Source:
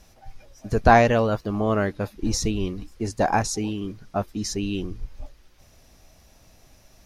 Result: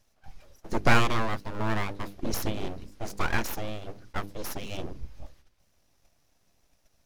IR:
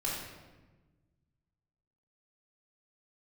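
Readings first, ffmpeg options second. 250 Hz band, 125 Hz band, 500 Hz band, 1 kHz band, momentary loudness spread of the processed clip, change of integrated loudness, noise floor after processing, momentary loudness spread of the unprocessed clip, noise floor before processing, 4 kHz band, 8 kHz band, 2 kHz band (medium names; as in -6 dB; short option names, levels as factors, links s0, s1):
-8.5 dB, -6.0 dB, -11.0 dB, -8.5 dB, 17 LU, -7.5 dB, -68 dBFS, 15 LU, -55 dBFS, -2.5 dB, -9.0 dB, -2.5 dB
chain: -af "agate=range=0.316:threshold=0.00398:ratio=16:detection=peak,bandreject=f=50:t=h:w=6,bandreject=f=100:t=h:w=6,bandreject=f=150:t=h:w=6,bandreject=f=200:t=h:w=6,bandreject=f=250:t=h:w=6,bandreject=f=300:t=h:w=6,bandreject=f=350:t=h:w=6,bandreject=f=400:t=h:w=6,aeval=exprs='abs(val(0))':c=same,volume=0.708"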